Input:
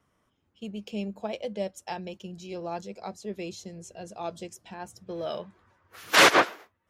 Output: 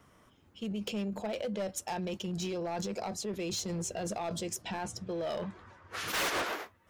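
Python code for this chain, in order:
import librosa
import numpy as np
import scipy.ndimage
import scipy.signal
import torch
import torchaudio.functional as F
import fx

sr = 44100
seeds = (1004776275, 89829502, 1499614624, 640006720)

p1 = fx.lowpass(x, sr, hz=8000.0, slope=12, at=(4.62, 6.08))
p2 = fx.over_compress(p1, sr, threshold_db=-43.0, ratio=-1.0)
p3 = p1 + (p2 * librosa.db_to_amplitude(1.5))
p4 = np.clip(p3, -10.0 ** (-26.5 / 20.0), 10.0 ** (-26.5 / 20.0))
y = p4 * librosa.db_to_amplitude(-3.5)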